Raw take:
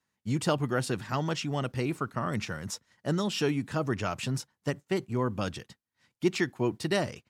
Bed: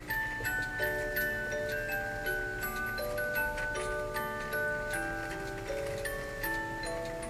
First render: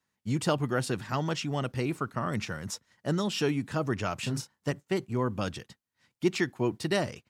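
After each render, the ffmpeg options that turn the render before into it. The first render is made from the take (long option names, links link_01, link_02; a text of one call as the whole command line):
ffmpeg -i in.wav -filter_complex "[0:a]asettb=1/sr,asplit=3[link_01][link_02][link_03];[link_01]atrim=end=4.214[link_04];[link_02]atrim=start=4.21:end=4.72,asetpts=PTS-STARTPTS,afade=type=in:duration=0.004:curve=qsin,afade=type=out:start_time=0.506:duration=0.004:curve=qsin,asplit=2[link_05][link_06];[link_06]adelay=34,volume=-7.5dB[link_07];[link_05][link_07]amix=inputs=2:normalize=0,atrim=end_sample=22491[link_08];[link_03]atrim=start=4.716[link_09];[link_04][link_08]acrossfade=duration=0.004:curve1=hsin:curve2=qsin[link_10];[link_10][link_09]acrossfade=duration=0.004:curve1=qsin:curve2=hsin" out.wav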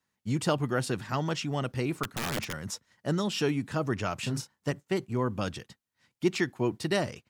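ffmpeg -i in.wav -filter_complex "[0:a]asettb=1/sr,asplit=3[link_01][link_02][link_03];[link_01]atrim=end=2.034[link_04];[link_02]atrim=start=2.03:end=2.53,asetpts=PTS-STARTPTS,afade=type=in:duration=0.004:curve=qsin,afade=type=out:start_time=0.496:duration=0.004:curve=qsin,aeval=exprs='(mod(18.8*val(0)+1,2)-1)/18.8':channel_layout=same[link_05];[link_03]atrim=start=2.526[link_06];[link_04][link_05]acrossfade=duration=0.004:curve1=hsin:curve2=qsin[link_07];[link_07][link_06]acrossfade=duration=0.004:curve1=qsin:curve2=hsin" out.wav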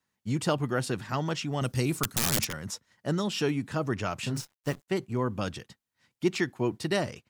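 ffmpeg -i in.wav -filter_complex "[0:a]asettb=1/sr,asplit=3[link_01][link_02][link_03];[link_01]atrim=end=1.614[link_04];[link_02]atrim=start=1.61:end=2.47,asetpts=PTS-STARTPTS,afade=type=in:duration=0.004:curve=qsin,afade=type=out:start_time=0.856:duration=0.004:curve=qsin,bass=frequency=250:gain=5,treble=frequency=4000:gain=13[link_05];[link_03]atrim=start=2.466[link_06];[link_04][link_05]acrossfade=duration=0.004:curve1=hsin:curve2=qsin[link_07];[link_07][link_06]acrossfade=duration=0.004:curve1=qsin:curve2=hsin,asettb=1/sr,asplit=3[link_08][link_09][link_10];[link_08]atrim=end=4.364[link_11];[link_09]atrim=start=4.36:end=4.88,asetpts=PTS-STARTPTS,afade=type=in:duration=0.004:curve=qsin,afade=type=out:start_time=0.516:duration=0.004:curve=qsin,acrusher=bits=8:dc=4:mix=0:aa=0.000001[link_12];[link_10]atrim=start=4.876[link_13];[link_11][link_12]acrossfade=duration=0.004:curve1=hsin:curve2=qsin[link_14];[link_14][link_13]acrossfade=duration=0.004:curve1=qsin:curve2=hsin" out.wav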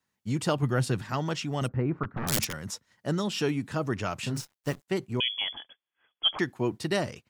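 ffmpeg -i in.wav -filter_complex "[0:a]asettb=1/sr,asplit=3[link_01][link_02][link_03];[link_01]atrim=end=0.624[link_04];[link_02]atrim=start=0.62:end=1.02,asetpts=PTS-STARTPTS,afade=type=in:duration=0.004:curve=qsin,afade=type=out:start_time=0.396:duration=0.004:curve=qsin,equalizer=frequency=120:width=1.5:gain=7.5[link_05];[link_03]atrim=start=1.016[link_06];[link_04][link_05]acrossfade=duration=0.004:curve1=hsin:curve2=qsin[link_07];[link_07][link_06]acrossfade=duration=0.004:curve1=qsin:curve2=hsin,asplit=3[link_08][link_09][link_10];[link_08]afade=type=out:start_time=1.67:duration=0.02[link_11];[link_09]lowpass=frequency=1700:width=0.5412,lowpass=frequency=1700:width=1.3066,afade=type=in:start_time=1.67:duration=0.02,afade=type=out:start_time=2.27:duration=0.02[link_12];[link_10]afade=type=in:start_time=2.27:duration=0.02[link_13];[link_11][link_12][link_13]amix=inputs=3:normalize=0,asettb=1/sr,asplit=3[link_14][link_15][link_16];[link_14]atrim=end=5.204[link_17];[link_15]atrim=start=5.2:end=6.39,asetpts=PTS-STARTPTS,afade=type=in:duration=0.004:curve=qsin,afade=type=out:start_time=1.186:duration=0.004:curve=qsin,lowpass=frequency=3000:width_type=q:width=0.5098,lowpass=frequency=3000:width_type=q:width=0.6013,lowpass=frequency=3000:width_type=q:width=0.9,lowpass=frequency=3000:width_type=q:width=2.563,afreqshift=-3500[link_18];[link_16]atrim=start=6.386[link_19];[link_17][link_18]acrossfade=duration=0.004:curve1=hsin:curve2=qsin[link_20];[link_20][link_19]acrossfade=duration=0.004:curve1=qsin:curve2=hsin" out.wav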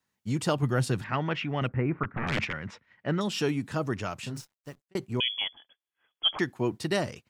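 ffmpeg -i in.wav -filter_complex "[0:a]asettb=1/sr,asplit=3[link_01][link_02][link_03];[link_01]atrim=end=1.044[link_04];[link_02]atrim=start=1.04:end=3.21,asetpts=PTS-STARTPTS,afade=type=in:duration=0.004:curve=qsin,afade=type=out:start_time=2.166:duration=0.004:curve=qsin,lowpass=frequency=2300:width_type=q:width=2.4[link_05];[link_03]atrim=start=3.206[link_06];[link_04][link_05]acrossfade=duration=0.004:curve1=hsin:curve2=qsin[link_07];[link_07][link_06]acrossfade=duration=0.004:curve1=qsin:curve2=hsin,asplit=3[link_08][link_09][link_10];[link_08]atrim=end=4.95,asetpts=PTS-STARTPTS,afade=type=out:start_time=3.81:duration=1.14[link_11];[link_09]atrim=start=4.95:end=5.48,asetpts=PTS-STARTPTS,afade=type=in:duration=0.004:curve=hsin,afade=type=out:start_time=0.526:duration=0.004:curve=hsin:silence=0.158489[link_12];[link_10]atrim=start=5.48,asetpts=PTS-STARTPTS,afade=type=in:duration=0.83:silence=0.158489[link_13];[link_11][link_12][link_13]concat=n=3:v=0:a=1" out.wav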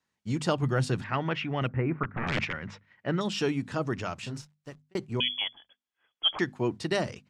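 ffmpeg -i in.wav -af "lowpass=7700,bandreject=frequency=50:width_type=h:width=6,bandreject=frequency=100:width_type=h:width=6,bandreject=frequency=150:width_type=h:width=6,bandreject=frequency=200:width_type=h:width=6,bandreject=frequency=250:width_type=h:width=6" out.wav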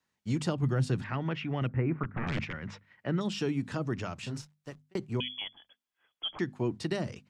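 ffmpeg -i in.wav -filter_complex "[0:a]acrossover=split=340[link_01][link_02];[link_02]acompressor=threshold=-38dB:ratio=2.5[link_03];[link_01][link_03]amix=inputs=2:normalize=0" out.wav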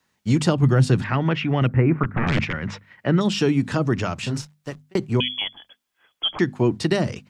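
ffmpeg -i in.wav -af "volume=11.5dB" out.wav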